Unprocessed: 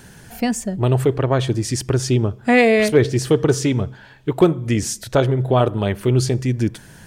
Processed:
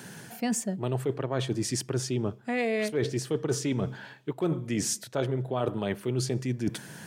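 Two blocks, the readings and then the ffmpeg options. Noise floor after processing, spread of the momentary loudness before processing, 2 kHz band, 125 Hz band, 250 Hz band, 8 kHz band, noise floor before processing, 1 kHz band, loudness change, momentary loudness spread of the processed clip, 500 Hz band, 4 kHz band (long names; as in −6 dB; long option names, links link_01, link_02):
−52 dBFS, 8 LU, −13.0 dB, −13.0 dB, −10.5 dB, −5.5 dB, −44 dBFS, −13.0 dB, −11.5 dB, 4 LU, −12.5 dB, −8.5 dB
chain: -af "highpass=frequency=130:width=0.5412,highpass=frequency=130:width=1.3066,areverse,acompressor=threshold=-26dB:ratio=6,areverse"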